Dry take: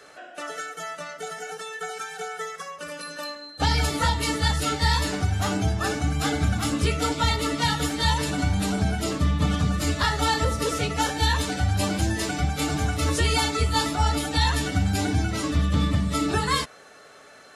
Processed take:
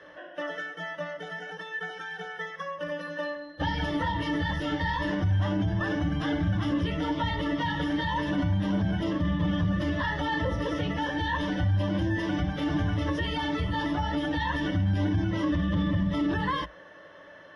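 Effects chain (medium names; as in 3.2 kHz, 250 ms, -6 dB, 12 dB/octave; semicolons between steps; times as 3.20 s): rippled EQ curve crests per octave 1.2, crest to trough 13 dB; peak limiter -18 dBFS, peak gain reduction 10 dB; distance through air 320 m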